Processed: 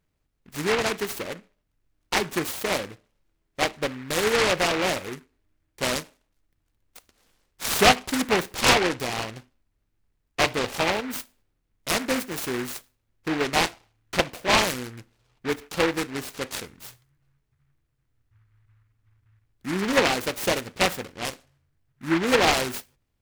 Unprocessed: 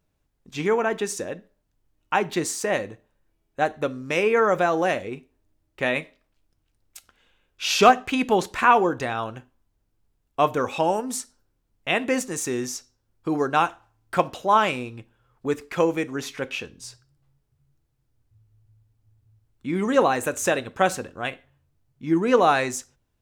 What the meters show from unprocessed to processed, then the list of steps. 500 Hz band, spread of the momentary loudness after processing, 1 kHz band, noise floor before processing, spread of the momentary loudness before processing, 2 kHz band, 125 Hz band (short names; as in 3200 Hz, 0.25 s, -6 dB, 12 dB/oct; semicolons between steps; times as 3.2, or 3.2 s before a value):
-3.0 dB, 17 LU, -4.5 dB, -73 dBFS, 17 LU, +1.5 dB, -0.5 dB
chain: noise-modulated delay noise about 1500 Hz, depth 0.2 ms; gain -2 dB